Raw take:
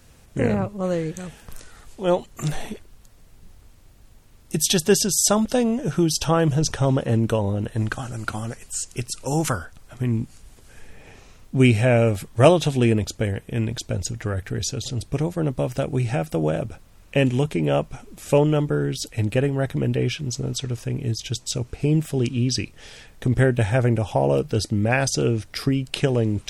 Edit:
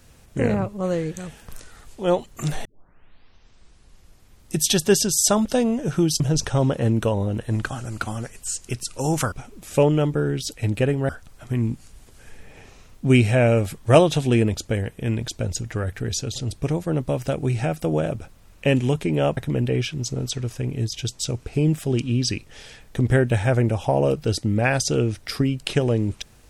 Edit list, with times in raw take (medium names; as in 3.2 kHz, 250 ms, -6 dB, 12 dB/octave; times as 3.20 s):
2.65 s: tape start 1.93 s
6.20–6.47 s: delete
17.87–19.64 s: move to 9.59 s